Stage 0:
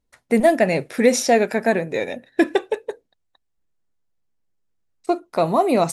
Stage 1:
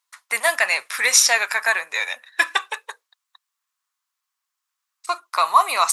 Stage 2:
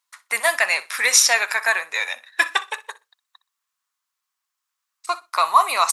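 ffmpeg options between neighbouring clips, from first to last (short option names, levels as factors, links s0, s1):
-af "highpass=f=1100:t=q:w=4.9,tiltshelf=f=1400:g=-9.5,volume=1.19"
-af "aecho=1:1:62|124:0.119|0.0214"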